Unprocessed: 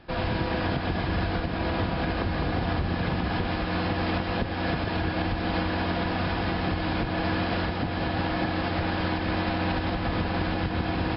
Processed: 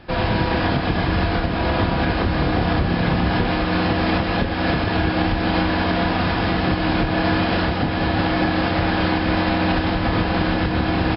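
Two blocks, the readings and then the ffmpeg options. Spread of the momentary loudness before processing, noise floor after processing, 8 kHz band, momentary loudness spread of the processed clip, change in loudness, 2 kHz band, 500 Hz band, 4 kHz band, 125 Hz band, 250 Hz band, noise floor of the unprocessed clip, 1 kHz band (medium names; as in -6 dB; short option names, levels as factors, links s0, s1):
1 LU, -23 dBFS, no reading, 1 LU, +7.5 dB, +8.0 dB, +7.5 dB, +7.5 dB, +7.0 dB, +8.0 dB, -30 dBFS, +7.5 dB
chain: -filter_complex "[0:a]asplit=2[s0][s1];[s1]adelay=29,volume=0.422[s2];[s0][s2]amix=inputs=2:normalize=0,volume=2.24"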